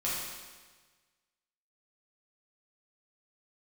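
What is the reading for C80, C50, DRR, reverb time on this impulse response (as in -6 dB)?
1.5 dB, -1.0 dB, -8.5 dB, 1.4 s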